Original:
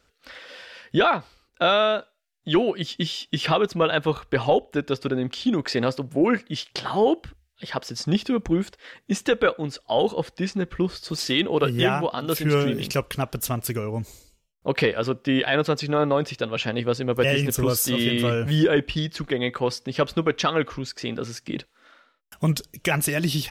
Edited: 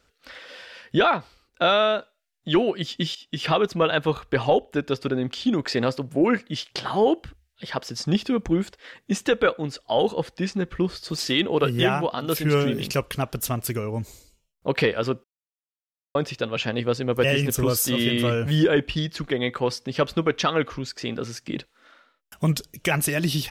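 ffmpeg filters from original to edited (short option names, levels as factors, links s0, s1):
-filter_complex "[0:a]asplit=4[s0][s1][s2][s3];[s0]atrim=end=3.15,asetpts=PTS-STARTPTS,afade=t=out:st=3.146:d=0.004:c=hsin:silence=0.188365[s4];[s1]atrim=start=3.15:end=15.24,asetpts=PTS-STARTPTS,afade=t=in:d=0.4:silence=0.188365,afade=t=out:st=12.086:d=0.004:c=hsin[s5];[s2]atrim=start=15.24:end=16.15,asetpts=PTS-STARTPTS,volume=0[s6];[s3]atrim=start=16.15,asetpts=PTS-STARTPTS,afade=t=in:d=0.004:c=hsin[s7];[s4][s5][s6][s7]concat=n=4:v=0:a=1"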